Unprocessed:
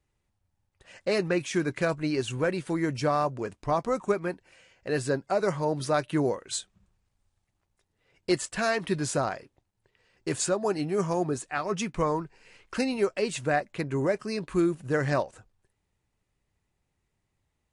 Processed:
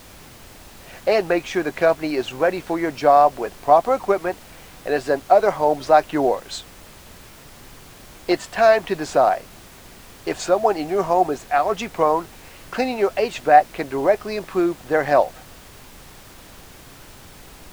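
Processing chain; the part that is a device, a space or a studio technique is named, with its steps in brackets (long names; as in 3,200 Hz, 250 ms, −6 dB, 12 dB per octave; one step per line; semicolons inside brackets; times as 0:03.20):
horn gramophone (band-pass filter 290–4,500 Hz; parametric band 730 Hz +11.5 dB 0.54 octaves; tape wow and flutter; pink noise bed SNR 22 dB)
level +6 dB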